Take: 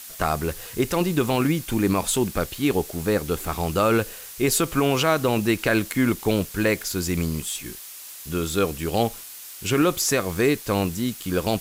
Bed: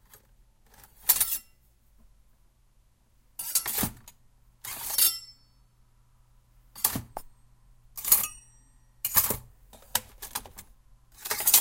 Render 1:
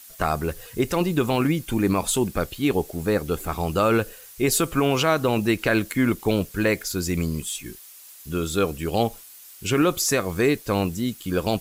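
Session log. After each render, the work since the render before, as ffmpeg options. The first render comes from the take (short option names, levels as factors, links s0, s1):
-af "afftdn=nr=8:nf=-40"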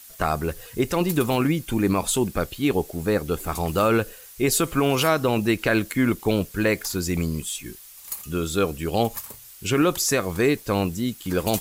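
-filter_complex "[1:a]volume=0.237[s0];[0:a][s0]amix=inputs=2:normalize=0"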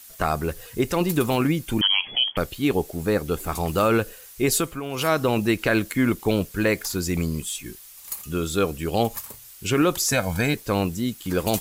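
-filter_complex "[0:a]asettb=1/sr,asplit=3[s0][s1][s2];[s0]atrim=end=1.814[s3];[s1]atrim=start=1.81:end=2.37,asetpts=PTS-STARTPTS,afade=t=in:d=0.004:c=qsin,afade=t=out:st=0.556:d=0.004:c=qsin,lowpass=f=2900:t=q:w=0.5098,lowpass=f=2900:t=q:w=0.6013,lowpass=f=2900:t=q:w=0.9,lowpass=f=2900:t=q:w=2.563,afreqshift=-3400[s4];[s2]atrim=start=2.366[s5];[s3][s4]acrossfade=d=0.004:c1=hsin:c2=qsin[s6];[s6][s5]acrossfade=d=0.004:c1=qsin:c2=hsin,asettb=1/sr,asplit=3[s7][s8][s9];[s7]atrim=end=10.124[s10];[s8]atrim=start=10.12:end=10.54,asetpts=PTS-STARTPTS,afade=t=in:d=0.004:c=qsin,afade=t=out:st=0.416:d=0.004:c=qsin,aecho=1:1:1.3:0.84,atrim=end_sample=18522[s11];[s9]atrim=start=10.536[s12];[s10][s11]acrossfade=d=0.004:c1=hsin:c2=qsin[s13];[s13][s12]acrossfade=d=0.004:c1=qsin:c2=hsin,asplit=3[s14][s15][s16];[s14]atrim=end=4.79,asetpts=PTS-STARTPTS,afade=t=out:st=4.55:d=0.24:silence=0.281838[s17];[s15]atrim=start=4.79:end=4.9,asetpts=PTS-STARTPTS,volume=0.282[s18];[s16]atrim=start=4.9,asetpts=PTS-STARTPTS,afade=t=in:d=0.24:silence=0.281838[s19];[s17][s18][s19]concat=n=3:v=0:a=1"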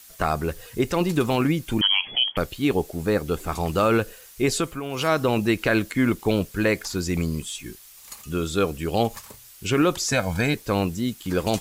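-filter_complex "[0:a]acrossover=split=7900[s0][s1];[s1]acompressor=threshold=0.00562:ratio=4:attack=1:release=60[s2];[s0][s2]amix=inputs=2:normalize=0"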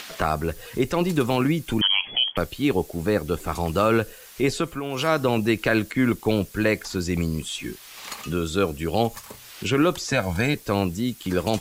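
-filter_complex "[0:a]acrossover=split=160|4400[s0][s1][s2];[s1]acompressor=mode=upward:threshold=0.0631:ratio=2.5[s3];[s2]alimiter=level_in=1.58:limit=0.0631:level=0:latency=1:release=139,volume=0.631[s4];[s0][s3][s4]amix=inputs=3:normalize=0"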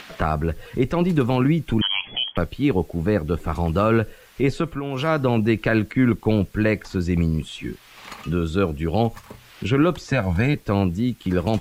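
-af "bass=f=250:g=6,treble=f=4000:g=-11"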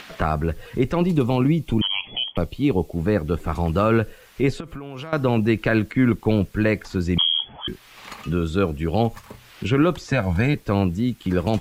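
-filter_complex "[0:a]asettb=1/sr,asplit=3[s0][s1][s2];[s0]atrim=end=1.064[s3];[s1]atrim=start=1.06:end=2.97,asetpts=PTS-STARTPTS,afade=t=in:d=0.004:c=qsin,afade=t=out:st=1.906:d=0.004:c=qsin,equalizer=f=1600:t=o:w=0.47:g=-13[s4];[s2]atrim=start=2.966[s5];[s3][s4]acrossfade=d=0.004:c1=hsin:c2=qsin[s6];[s6][s5]acrossfade=d=0.004:c1=qsin:c2=hsin,asettb=1/sr,asplit=3[s7][s8][s9];[s7]atrim=end=4.604[s10];[s8]atrim=start=4.6:end=5.13,asetpts=PTS-STARTPTS,afade=t=in:d=0.004:c=qsin,afade=t=out:st=0.526:d=0.004:c=qsin,acompressor=threshold=0.0355:ratio=12:attack=3.2:release=140:knee=1:detection=peak[s11];[s9]atrim=start=5.126[s12];[s10][s11]acrossfade=d=0.004:c1=hsin:c2=qsin[s13];[s13][s12]acrossfade=d=0.004:c1=qsin:c2=hsin,asettb=1/sr,asplit=3[s14][s15][s16];[s14]atrim=end=7.184[s17];[s15]atrim=start=7.18:end=7.68,asetpts=PTS-STARTPTS,afade=t=in:d=0.004:c=qsin,afade=t=out:st=0.496:d=0.004:c=qsin,lowpass=f=2900:t=q:w=0.5098,lowpass=f=2900:t=q:w=0.6013,lowpass=f=2900:t=q:w=0.9,lowpass=f=2900:t=q:w=2.563,afreqshift=-3400[s18];[s16]atrim=start=7.676[s19];[s17][s18]acrossfade=d=0.004:c1=hsin:c2=qsin[s20];[s20][s19]acrossfade=d=0.004:c1=qsin:c2=hsin"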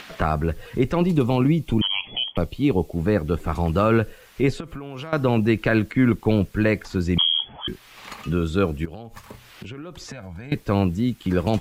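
-filter_complex "[0:a]asettb=1/sr,asplit=3[s0][s1][s2];[s0]atrim=end=8.854[s3];[s1]atrim=start=8.85:end=10.52,asetpts=PTS-STARTPTS,afade=t=in:d=0.004:c=qsin,afade=t=out:st=1.666:d=0.004:c=qsin,acompressor=threshold=0.0251:ratio=16:attack=3.2:release=140:knee=1:detection=peak[s4];[s2]atrim=start=10.516[s5];[s3][s4]acrossfade=d=0.004:c1=hsin:c2=qsin[s6];[s6][s5]acrossfade=d=0.004:c1=qsin:c2=hsin"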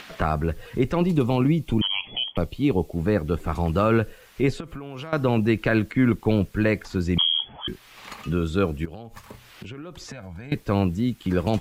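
-af "volume=0.841"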